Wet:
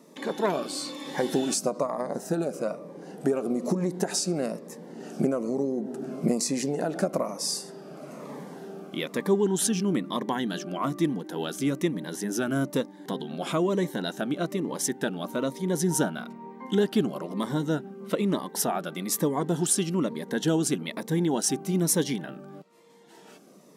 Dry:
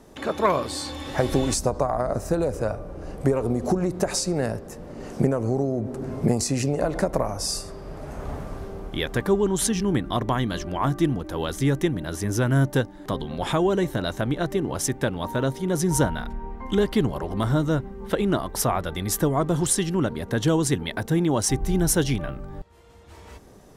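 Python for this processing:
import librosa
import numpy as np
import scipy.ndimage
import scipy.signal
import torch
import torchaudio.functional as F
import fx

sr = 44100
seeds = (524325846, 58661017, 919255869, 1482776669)

y = fx.brickwall_highpass(x, sr, low_hz=150.0)
y = fx.notch_cascade(y, sr, direction='falling', hz=1.1)
y = y * librosa.db_to_amplitude(-1.5)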